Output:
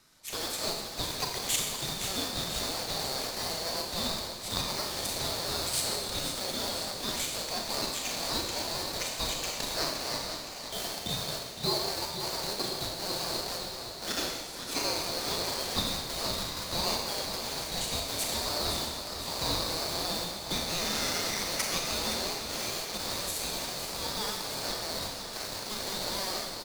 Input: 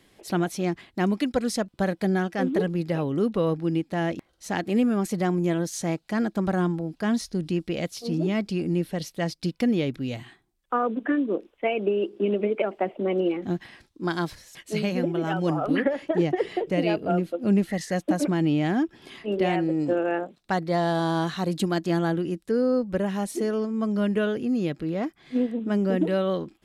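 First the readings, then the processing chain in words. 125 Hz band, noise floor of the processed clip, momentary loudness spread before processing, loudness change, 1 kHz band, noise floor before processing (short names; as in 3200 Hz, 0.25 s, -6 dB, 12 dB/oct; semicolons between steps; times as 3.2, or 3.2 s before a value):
-13.0 dB, -40 dBFS, 6 LU, -5.5 dB, -5.0 dB, -66 dBFS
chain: rattling part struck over -36 dBFS, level -29 dBFS; in parallel at -5 dB: bit-crush 5-bit; on the sum: inverse Chebyshev high-pass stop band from 920 Hz, stop band 40 dB; Schroeder reverb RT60 1.2 s, combs from 27 ms, DRR 0.5 dB; reverse; upward compressor, threshold -47 dBFS; reverse; vibrato 4.4 Hz 21 cents; feedback echo 0.517 s, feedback 59%, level -10.5 dB; ring modulator 1900 Hz; warbling echo 0.502 s, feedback 78%, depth 115 cents, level -14 dB; gain +2.5 dB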